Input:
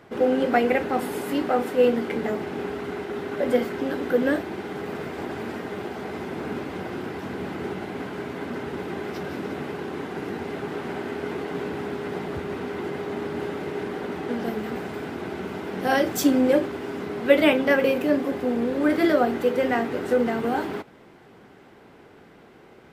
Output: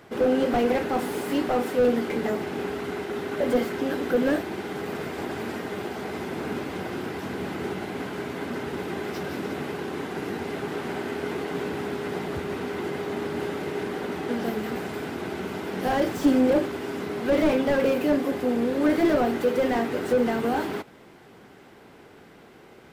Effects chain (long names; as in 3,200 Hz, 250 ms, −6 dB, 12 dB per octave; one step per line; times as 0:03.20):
high-shelf EQ 4,000 Hz +6.5 dB
slew-rate limiting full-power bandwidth 69 Hz